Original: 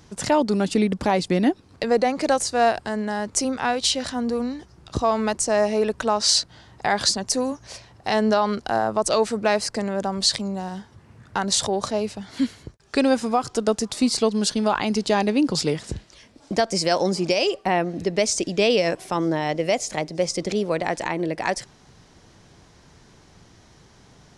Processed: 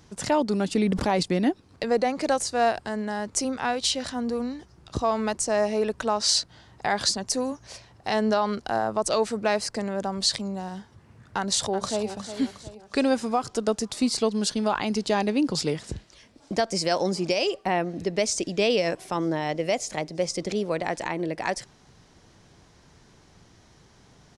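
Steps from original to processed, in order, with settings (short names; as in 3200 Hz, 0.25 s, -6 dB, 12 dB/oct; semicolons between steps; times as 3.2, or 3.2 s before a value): 0.73–1.23 sustainer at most 33 dB/s; 11.37–12.09 echo throw 0.36 s, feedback 45%, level -11 dB; gain -3.5 dB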